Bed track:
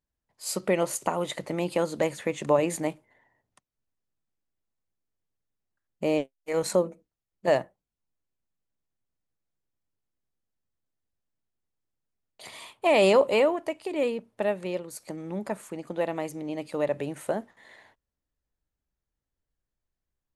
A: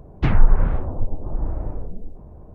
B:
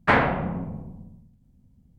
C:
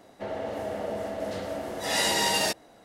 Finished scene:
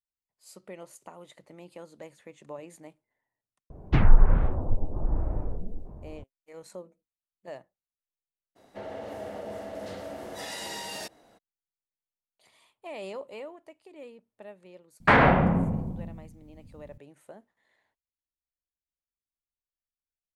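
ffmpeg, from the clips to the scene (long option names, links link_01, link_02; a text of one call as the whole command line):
ffmpeg -i bed.wav -i cue0.wav -i cue1.wav -i cue2.wav -filter_complex "[0:a]volume=-19dB[link_01];[3:a]alimiter=limit=-23.5dB:level=0:latency=1:release=71[link_02];[2:a]alimiter=level_in=13.5dB:limit=-1dB:release=50:level=0:latency=1[link_03];[1:a]atrim=end=2.54,asetpts=PTS-STARTPTS,volume=-2.5dB,afade=type=in:duration=0.004:curve=hsin,afade=type=out:start_time=2.536:duration=0.004:curve=hsin,adelay=3700[link_04];[link_02]atrim=end=2.84,asetpts=PTS-STARTPTS,volume=-5dB,afade=type=in:duration=0.02,afade=type=out:start_time=2.82:duration=0.02,adelay=8550[link_05];[link_03]atrim=end=1.98,asetpts=PTS-STARTPTS,volume=-7.5dB,afade=type=in:duration=0.004:curve=hsin,afade=type=out:start_time=1.976:duration=0.004:curve=hsin,adelay=15000[link_06];[link_01][link_04][link_05][link_06]amix=inputs=4:normalize=0" out.wav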